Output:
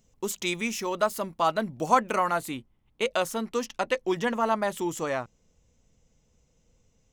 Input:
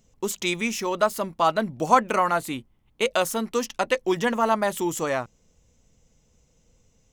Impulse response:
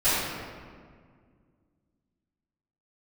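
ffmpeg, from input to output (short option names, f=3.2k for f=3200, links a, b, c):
-af "asetnsamples=n=441:p=0,asendcmd='2.51 highshelf g -6',highshelf=f=8.2k:g=2,volume=-3.5dB"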